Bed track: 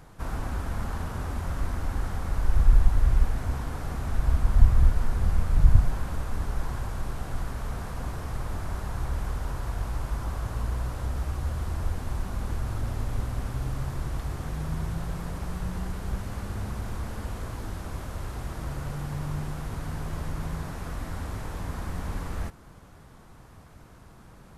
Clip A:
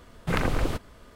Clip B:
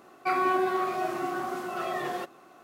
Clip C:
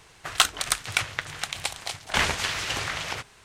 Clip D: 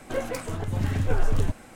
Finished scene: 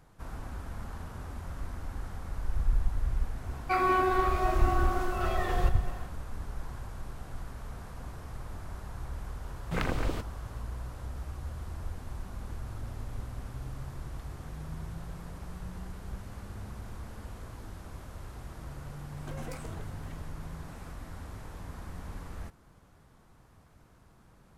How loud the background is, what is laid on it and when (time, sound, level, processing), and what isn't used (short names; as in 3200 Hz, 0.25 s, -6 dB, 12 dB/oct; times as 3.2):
bed track -9 dB
3.44 add B -1 dB + regenerating reverse delay 0.13 s, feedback 73%, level -13.5 dB
9.44 add A -5.5 dB + bell 11000 Hz -4.5 dB 0.25 oct
19.17 add D -15.5 dB + negative-ratio compressor -31 dBFS
not used: C